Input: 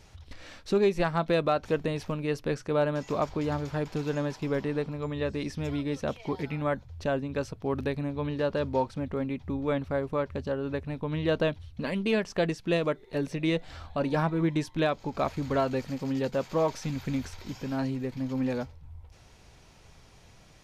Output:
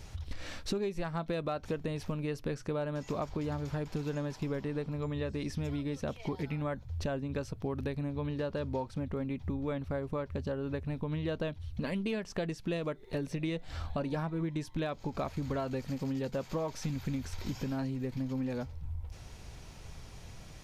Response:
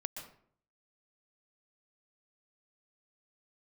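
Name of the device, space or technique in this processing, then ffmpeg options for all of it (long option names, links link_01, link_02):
ASMR close-microphone chain: -af "lowshelf=frequency=170:gain=7,acompressor=threshold=-35dB:ratio=5,highshelf=frequency=7800:gain=5,volume=2.5dB"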